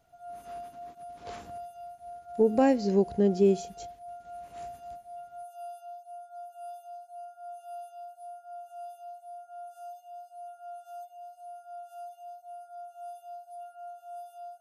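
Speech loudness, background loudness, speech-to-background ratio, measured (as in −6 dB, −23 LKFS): −25.0 LKFS, −44.5 LKFS, 19.5 dB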